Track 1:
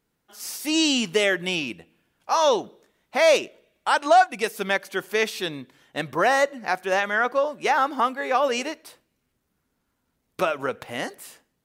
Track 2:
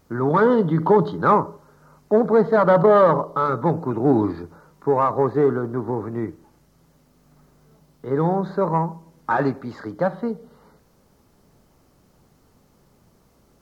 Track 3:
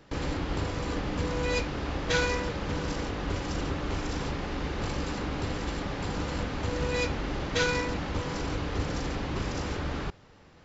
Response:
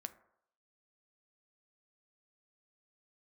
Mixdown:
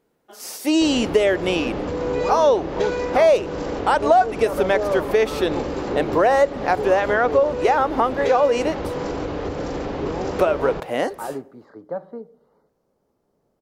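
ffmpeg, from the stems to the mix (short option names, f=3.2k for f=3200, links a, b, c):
-filter_complex "[0:a]volume=-0.5dB[a];[1:a]adelay=1900,volume=-19dB[b];[2:a]acompressor=threshold=-31dB:ratio=3,asoftclip=type=tanh:threshold=-22.5dB,adelay=700,volume=1dB[c];[a][b][c]amix=inputs=3:normalize=0,equalizer=f=500:w=0.6:g=13,acompressor=threshold=-16dB:ratio=2.5"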